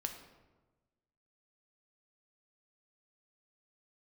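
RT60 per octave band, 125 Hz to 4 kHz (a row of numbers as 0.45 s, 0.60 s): 1.5 s, 1.4 s, 1.3 s, 1.1 s, 0.90 s, 0.70 s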